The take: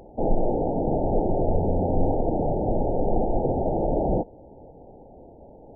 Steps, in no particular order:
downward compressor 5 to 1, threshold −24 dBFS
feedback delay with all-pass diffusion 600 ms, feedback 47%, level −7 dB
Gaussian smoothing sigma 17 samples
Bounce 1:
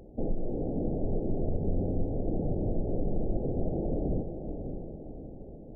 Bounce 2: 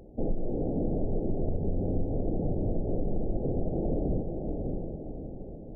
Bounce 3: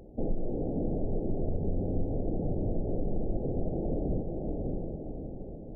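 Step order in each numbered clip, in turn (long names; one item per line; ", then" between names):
downward compressor, then Gaussian smoothing, then feedback delay with all-pass diffusion
Gaussian smoothing, then feedback delay with all-pass diffusion, then downward compressor
feedback delay with all-pass diffusion, then downward compressor, then Gaussian smoothing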